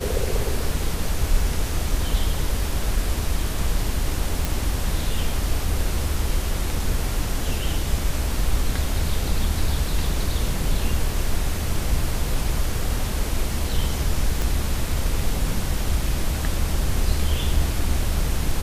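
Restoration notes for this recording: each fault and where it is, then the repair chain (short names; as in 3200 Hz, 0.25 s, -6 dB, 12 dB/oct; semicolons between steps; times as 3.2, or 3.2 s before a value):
4.45 pop
14.42 pop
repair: de-click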